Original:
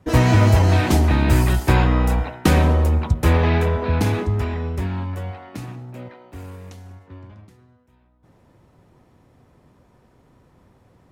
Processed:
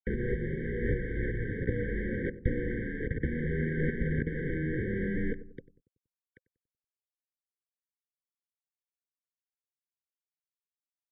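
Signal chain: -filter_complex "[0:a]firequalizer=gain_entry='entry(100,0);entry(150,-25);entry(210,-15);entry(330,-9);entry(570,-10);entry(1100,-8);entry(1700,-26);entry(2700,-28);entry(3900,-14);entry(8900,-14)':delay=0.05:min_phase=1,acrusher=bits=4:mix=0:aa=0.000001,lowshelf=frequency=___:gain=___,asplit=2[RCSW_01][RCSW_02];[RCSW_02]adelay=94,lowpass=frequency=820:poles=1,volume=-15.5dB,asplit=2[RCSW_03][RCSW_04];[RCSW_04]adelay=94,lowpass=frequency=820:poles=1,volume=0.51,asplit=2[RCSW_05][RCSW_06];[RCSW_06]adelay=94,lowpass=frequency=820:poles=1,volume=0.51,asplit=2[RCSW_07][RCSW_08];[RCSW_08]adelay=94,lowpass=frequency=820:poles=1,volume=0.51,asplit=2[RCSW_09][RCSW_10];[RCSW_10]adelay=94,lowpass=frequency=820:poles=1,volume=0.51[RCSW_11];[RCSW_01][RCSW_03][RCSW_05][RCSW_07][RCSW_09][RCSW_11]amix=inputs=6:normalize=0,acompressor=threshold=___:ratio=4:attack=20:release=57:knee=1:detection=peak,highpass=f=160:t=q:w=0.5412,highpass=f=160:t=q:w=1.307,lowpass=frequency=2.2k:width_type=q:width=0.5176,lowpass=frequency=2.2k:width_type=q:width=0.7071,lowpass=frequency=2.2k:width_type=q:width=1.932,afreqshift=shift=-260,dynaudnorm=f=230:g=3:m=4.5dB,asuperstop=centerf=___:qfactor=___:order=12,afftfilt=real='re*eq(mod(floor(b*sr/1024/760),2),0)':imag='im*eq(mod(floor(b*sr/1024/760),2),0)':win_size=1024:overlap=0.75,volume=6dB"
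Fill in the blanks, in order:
90, -12, -35dB, 660, 2.1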